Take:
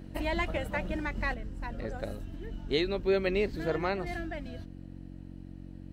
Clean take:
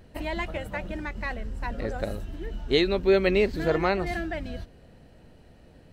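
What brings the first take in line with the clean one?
hum removal 45.7 Hz, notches 7
level 0 dB, from 0:01.34 +6.5 dB

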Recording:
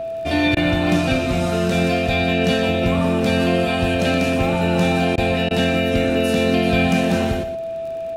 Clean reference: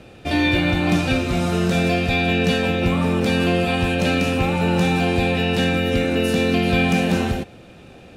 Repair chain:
click removal
notch filter 660 Hz, Q 30
repair the gap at 0:00.55/0:05.16/0:05.49, 16 ms
echo removal 122 ms −10.5 dB

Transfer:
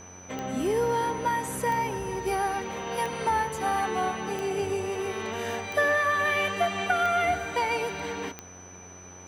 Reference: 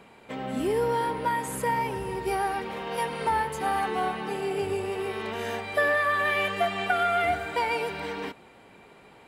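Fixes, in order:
click removal
hum removal 90.9 Hz, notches 19
notch filter 6,000 Hz, Q 30

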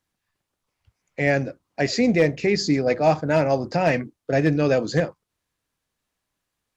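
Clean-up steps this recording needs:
clipped peaks rebuilt −9 dBFS

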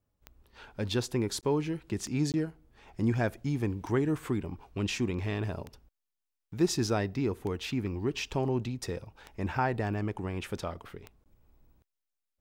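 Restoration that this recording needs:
click removal
repair the gap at 0:01.41/0:02.32/0:11.24, 18 ms

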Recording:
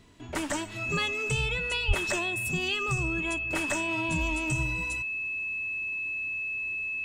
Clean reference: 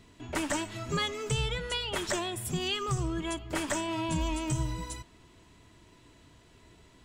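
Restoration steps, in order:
notch filter 2,600 Hz, Q 30
high-pass at the plosives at 0:01.87

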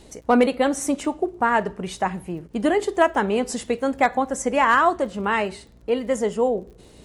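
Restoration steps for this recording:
clipped peaks rebuilt −7.5 dBFS
click removal
hum removal 59 Hz, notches 9

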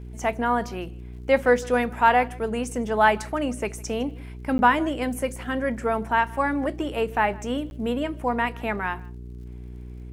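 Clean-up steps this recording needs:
click removal
hum removal 60.7 Hz, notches 7
repair the gap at 0:04.58/0:07.70, 11 ms
echo removal 157 ms −23.5 dB

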